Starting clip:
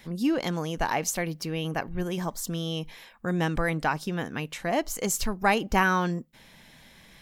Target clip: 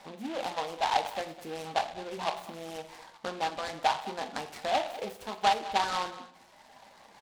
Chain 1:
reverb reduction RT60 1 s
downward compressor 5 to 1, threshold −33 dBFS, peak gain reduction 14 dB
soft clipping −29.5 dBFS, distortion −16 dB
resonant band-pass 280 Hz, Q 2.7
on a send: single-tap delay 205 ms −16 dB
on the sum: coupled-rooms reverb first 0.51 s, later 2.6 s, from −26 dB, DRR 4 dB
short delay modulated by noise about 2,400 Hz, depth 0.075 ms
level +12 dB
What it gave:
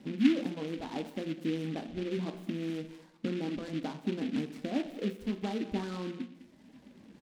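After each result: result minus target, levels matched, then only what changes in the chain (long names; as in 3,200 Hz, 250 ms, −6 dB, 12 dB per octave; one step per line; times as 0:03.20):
250 Hz band +15.5 dB; soft clipping: distortion +9 dB
change: resonant band-pass 800 Hz, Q 2.7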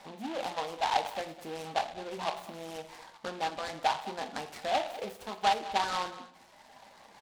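soft clipping: distortion +9 dB
change: soft clipping −23.5 dBFS, distortion −25 dB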